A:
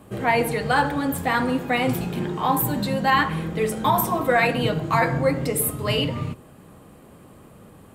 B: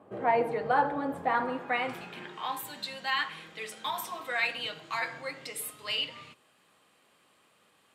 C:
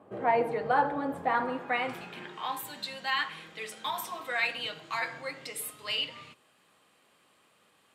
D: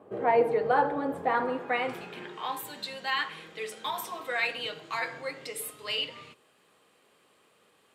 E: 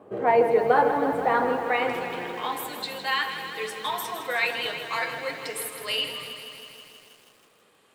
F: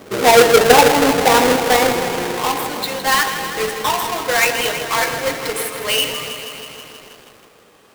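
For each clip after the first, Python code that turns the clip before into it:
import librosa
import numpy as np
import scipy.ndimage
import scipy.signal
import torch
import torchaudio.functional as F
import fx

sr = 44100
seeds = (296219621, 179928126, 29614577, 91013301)

y1 = fx.filter_sweep_bandpass(x, sr, from_hz=670.0, to_hz=3600.0, start_s=1.19, end_s=2.65, q=0.94)
y1 = F.gain(torch.from_numpy(y1), -3.0).numpy()
y2 = y1
y3 = fx.peak_eq(y2, sr, hz=430.0, db=7.0, octaves=0.56)
y4 = fx.echo_crushed(y3, sr, ms=160, feedback_pct=80, bits=9, wet_db=-9.5)
y4 = F.gain(torch.from_numpy(y4), 3.5).numpy()
y5 = fx.halfwave_hold(y4, sr)
y5 = F.gain(torch.from_numpy(y5), 6.5).numpy()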